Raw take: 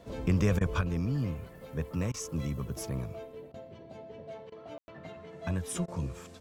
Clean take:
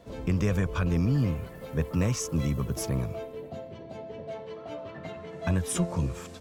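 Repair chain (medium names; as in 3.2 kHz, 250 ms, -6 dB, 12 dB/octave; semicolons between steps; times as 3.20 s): room tone fill 4.78–4.88 s; interpolate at 0.59/2.12/3.52/4.50/5.86 s, 19 ms; gain correction +6 dB, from 0.81 s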